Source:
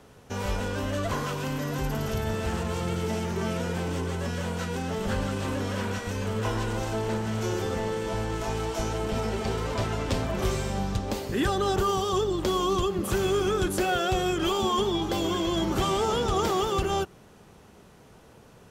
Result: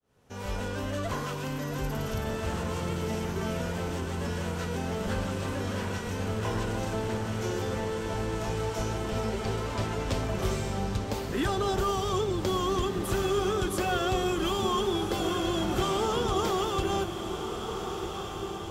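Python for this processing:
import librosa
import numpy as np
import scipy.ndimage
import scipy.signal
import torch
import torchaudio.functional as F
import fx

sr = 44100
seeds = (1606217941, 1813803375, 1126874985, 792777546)

y = fx.fade_in_head(x, sr, length_s=0.6)
y = fx.echo_diffused(y, sr, ms=1530, feedback_pct=60, wet_db=-7.5)
y = y * librosa.db_to_amplitude(-3.0)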